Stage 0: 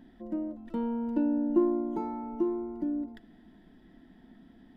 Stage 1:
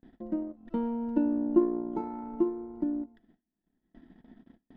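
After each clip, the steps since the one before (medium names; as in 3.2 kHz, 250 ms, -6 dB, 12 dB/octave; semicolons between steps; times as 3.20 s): gate with hold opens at -46 dBFS; low-pass 2.7 kHz 6 dB/octave; transient shaper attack +3 dB, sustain -12 dB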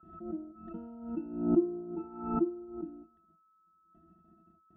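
whistle 1.3 kHz -59 dBFS; pitch-class resonator E, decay 0.1 s; swell ahead of each attack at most 78 dB/s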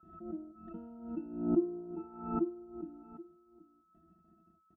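delay 778 ms -17.5 dB; trim -3 dB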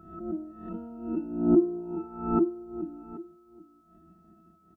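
reverse spectral sustain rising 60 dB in 0.54 s; trim +7 dB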